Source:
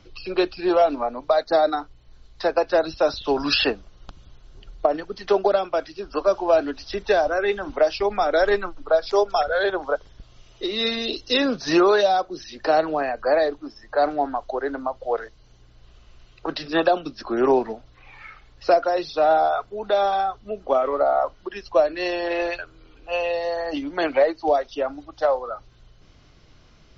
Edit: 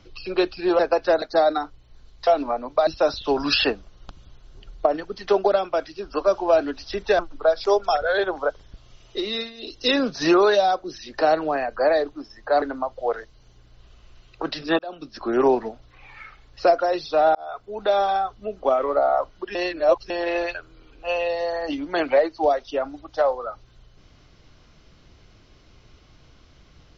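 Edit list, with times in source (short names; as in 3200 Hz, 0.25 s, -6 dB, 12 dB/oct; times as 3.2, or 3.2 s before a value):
0.79–1.39 swap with 2.44–2.87
7.19–8.65 cut
10.7–11.31 dip -16 dB, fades 0.28 s
14.08–14.66 cut
16.83–17.29 fade in
19.39–19.87 fade in
21.59–22.14 reverse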